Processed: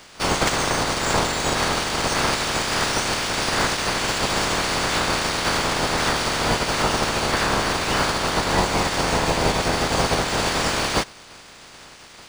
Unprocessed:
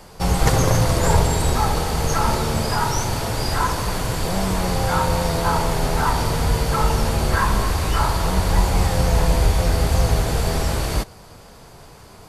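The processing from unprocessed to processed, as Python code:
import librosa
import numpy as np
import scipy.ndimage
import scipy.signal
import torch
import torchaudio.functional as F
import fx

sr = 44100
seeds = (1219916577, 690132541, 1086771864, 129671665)

y = fx.spec_clip(x, sr, under_db=23)
y = fx.rider(y, sr, range_db=10, speed_s=0.5)
y = np.interp(np.arange(len(y)), np.arange(len(y))[::3], y[::3])
y = F.gain(torch.from_numpy(y), -2.5).numpy()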